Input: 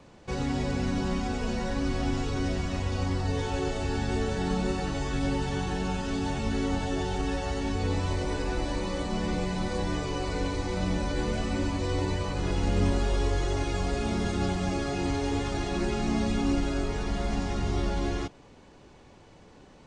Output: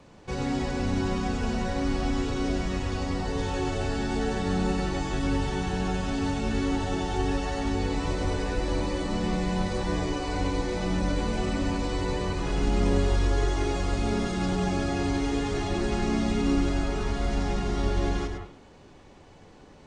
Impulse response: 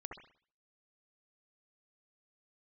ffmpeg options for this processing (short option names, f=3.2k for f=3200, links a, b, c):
-filter_complex "[0:a]asplit=2[a][b];[1:a]atrim=start_sample=2205,adelay=104[c];[b][c]afir=irnorm=-1:irlink=0,volume=-1dB[d];[a][d]amix=inputs=2:normalize=0"